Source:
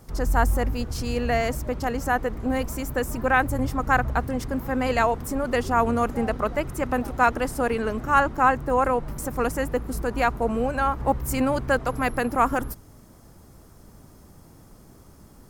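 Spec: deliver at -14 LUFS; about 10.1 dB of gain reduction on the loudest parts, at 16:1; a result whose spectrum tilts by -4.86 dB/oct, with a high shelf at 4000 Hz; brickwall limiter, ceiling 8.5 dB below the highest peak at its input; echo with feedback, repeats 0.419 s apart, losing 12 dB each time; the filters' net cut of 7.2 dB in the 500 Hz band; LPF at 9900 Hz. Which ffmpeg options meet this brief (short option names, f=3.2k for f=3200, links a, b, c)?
-af "lowpass=9.9k,equalizer=f=500:t=o:g=-8.5,highshelf=f=4k:g=4.5,acompressor=threshold=-25dB:ratio=16,alimiter=limit=-23dB:level=0:latency=1,aecho=1:1:419|838|1257:0.251|0.0628|0.0157,volume=19.5dB"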